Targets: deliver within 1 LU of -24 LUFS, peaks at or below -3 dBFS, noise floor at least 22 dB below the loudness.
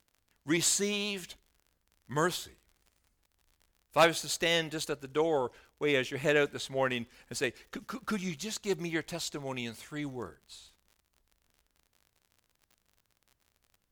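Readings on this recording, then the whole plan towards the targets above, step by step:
tick rate 45 per s; loudness -31.5 LUFS; peak level -11.0 dBFS; loudness target -24.0 LUFS
-> de-click; trim +7.5 dB

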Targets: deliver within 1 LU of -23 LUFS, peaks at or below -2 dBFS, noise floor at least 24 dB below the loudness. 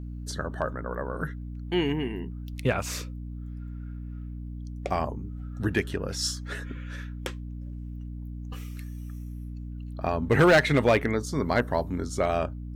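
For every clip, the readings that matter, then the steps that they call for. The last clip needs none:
clipped samples 0.2%; clipping level -13.5 dBFS; hum 60 Hz; highest harmonic 300 Hz; hum level -34 dBFS; loudness -28.0 LUFS; peak level -13.5 dBFS; loudness target -23.0 LUFS
-> clip repair -13.5 dBFS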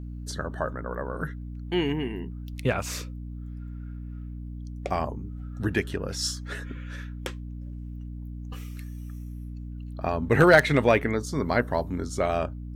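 clipped samples 0.0%; hum 60 Hz; highest harmonic 300 Hz; hum level -34 dBFS
-> de-hum 60 Hz, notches 5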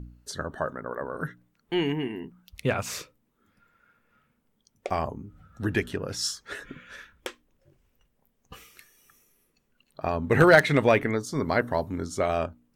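hum not found; loudness -26.5 LUFS; peak level -4.5 dBFS; loudness target -23.0 LUFS
-> trim +3.5 dB; peak limiter -2 dBFS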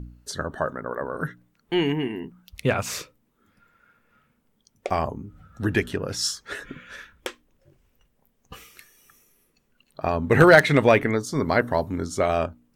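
loudness -23.0 LUFS; peak level -2.0 dBFS; noise floor -69 dBFS

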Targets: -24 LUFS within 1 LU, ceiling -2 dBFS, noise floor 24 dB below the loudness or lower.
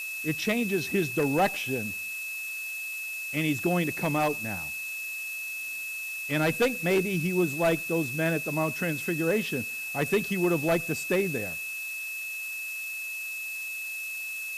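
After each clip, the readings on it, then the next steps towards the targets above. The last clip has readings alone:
steady tone 2.6 kHz; tone level -33 dBFS; noise floor -36 dBFS; noise floor target -53 dBFS; loudness -28.5 LUFS; peak level -15.0 dBFS; loudness target -24.0 LUFS
-> band-stop 2.6 kHz, Q 30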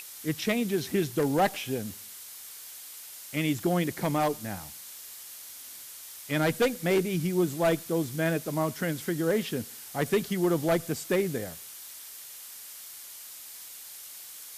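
steady tone not found; noise floor -45 dBFS; noise floor target -53 dBFS
-> noise reduction 8 dB, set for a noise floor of -45 dBFS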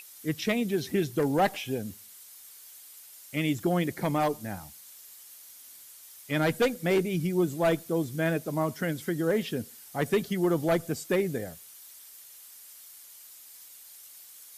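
noise floor -50 dBFS; noise floor target -53 dBFS
-> noise reduction 6 dB, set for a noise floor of -50 dBFS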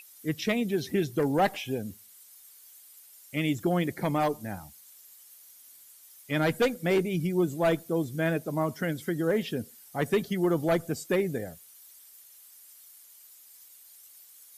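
noise floor -54 dBFS; loudness -29.0 LUFS; peak level -16.0 dBFS; loudness target -24.0 LUFS
-> trim +5 dB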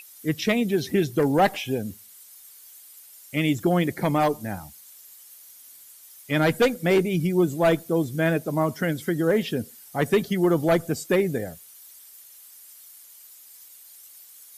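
loudness -24.0 LUFS; peak level -11.0 dBFS; noise floor -49 dBFS

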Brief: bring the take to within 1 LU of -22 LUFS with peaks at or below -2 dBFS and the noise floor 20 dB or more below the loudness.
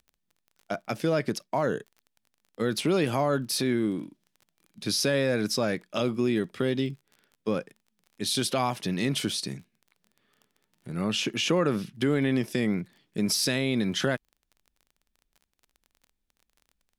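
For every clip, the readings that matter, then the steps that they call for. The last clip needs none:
tick rate 23 per s; loudness -28.0 LUFS; peak level -12.0 dBFS; loudness target -22.0 LUFS
-> de-click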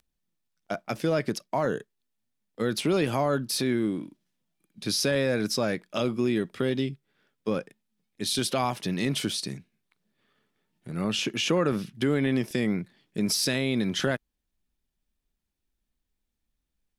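tick rate 0.059 per s; loudness -28.0 LUFS; peak level -12.0 dBFS; loudness target -22.0 LUFS
-> trim +6 dB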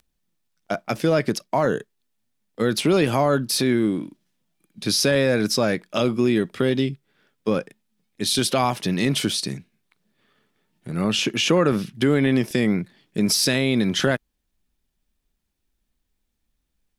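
loudness -22.0 LUFS; peak level -6.0 dBFS; noise floor -76 dBFS

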